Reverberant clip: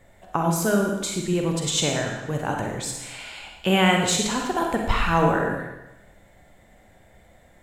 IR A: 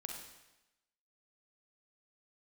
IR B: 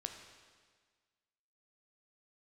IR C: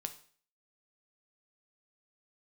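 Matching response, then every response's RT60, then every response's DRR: A; 1.0 s, 1.6 s, 0.45 s; 1.0 dB, 4.0 dB, 7.5 dB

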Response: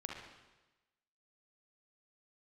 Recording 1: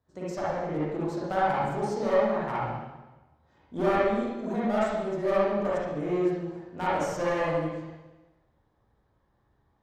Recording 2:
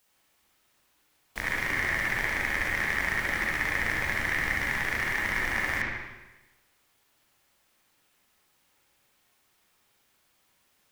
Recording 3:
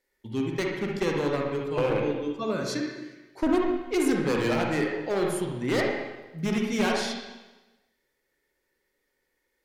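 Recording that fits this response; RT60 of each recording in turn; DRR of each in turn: 3; 1.1 s, 1.1 s, 1.1 s; -9.0 dB, -5.0 dB, -1.0 dB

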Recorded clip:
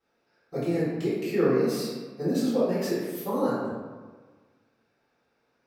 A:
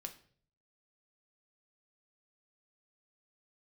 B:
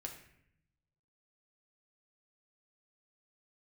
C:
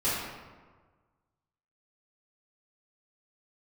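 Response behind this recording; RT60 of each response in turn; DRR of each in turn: C; 0.50 s, 0.70 s, 1.4 s; 5.0 dB, 2.0 dB, -13.0 dB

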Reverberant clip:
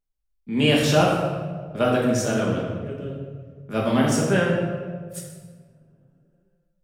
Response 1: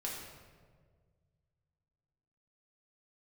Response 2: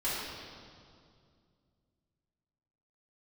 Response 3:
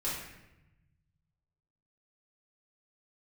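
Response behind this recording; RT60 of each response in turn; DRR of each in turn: 1; 1.7 s, 2.3 s, 0.95 s; -4.0 dB, -11.5 dB, -9.0 dB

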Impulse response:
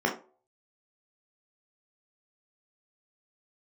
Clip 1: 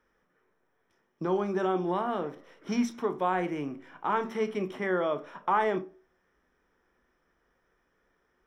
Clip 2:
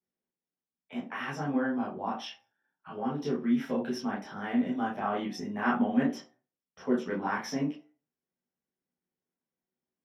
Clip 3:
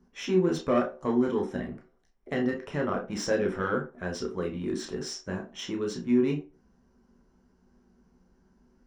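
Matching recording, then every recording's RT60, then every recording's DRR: 3; 0.40 s, 0.40 s, 0.40 s; 8.5 dB, -6.5 dB, 0.0 dB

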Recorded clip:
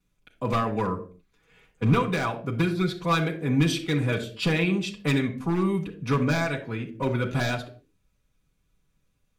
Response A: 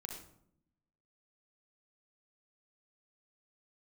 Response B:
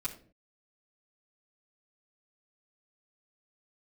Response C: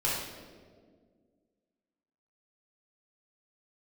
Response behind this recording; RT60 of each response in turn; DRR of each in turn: B; 0.70 s, 0.45 s, 1.8 s; 1.0 dB, -8.0 dB, -7.0 dB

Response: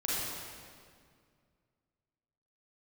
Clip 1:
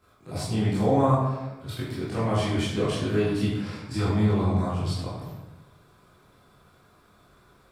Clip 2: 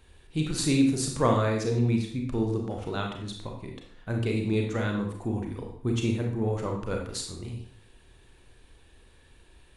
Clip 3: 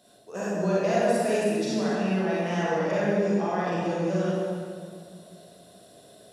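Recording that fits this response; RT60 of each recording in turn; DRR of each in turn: 3; 1.1 s, 0.60 s, 2.1 s; -11.0 dB, 1.0 dB, -8.0 dB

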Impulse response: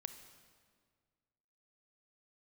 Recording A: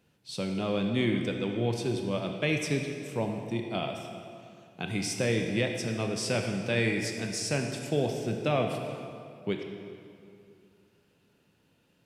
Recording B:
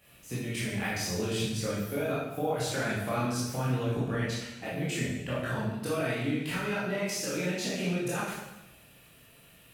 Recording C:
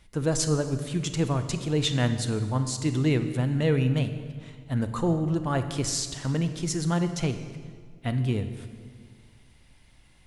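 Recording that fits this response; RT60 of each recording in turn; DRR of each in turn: C; 2.5 s, 0.95 s, 1.8 s; 3.0 dB, -9.0 dB, 9.0 dB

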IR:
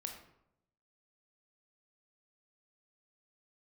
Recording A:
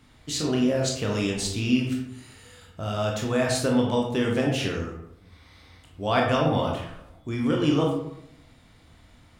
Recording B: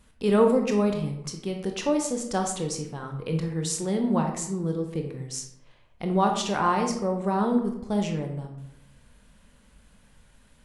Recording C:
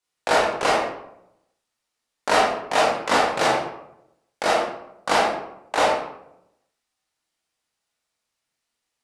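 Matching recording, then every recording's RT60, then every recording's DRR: B; 0.80 s, 0.80 s, 0.80 s; -1.0 dB, 3.0 dB, -6.5 dB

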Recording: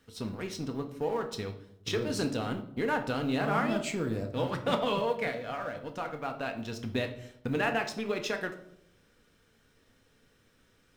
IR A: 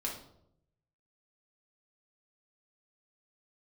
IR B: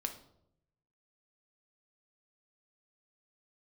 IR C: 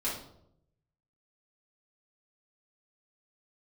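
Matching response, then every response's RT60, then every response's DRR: B; 0.75 s, 0.75 s, 0.75 s; -2.5 dB, 5.0 dB, -8.5 dB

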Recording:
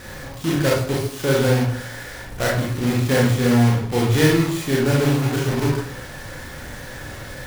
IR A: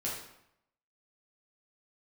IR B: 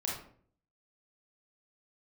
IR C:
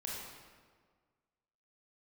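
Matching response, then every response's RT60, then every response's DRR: B; 0.75 s, 0.55 s, 1.7 s; -6.0 dB, -3.5 dB, -4.5 dB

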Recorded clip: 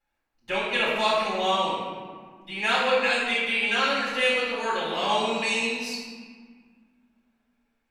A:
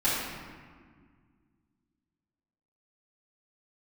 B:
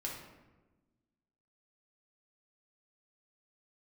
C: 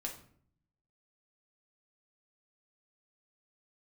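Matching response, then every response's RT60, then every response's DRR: A; 1.8 s, 1.2 s, 0.60 s; -12.0 dB, -3.0 dB, 0.0 dB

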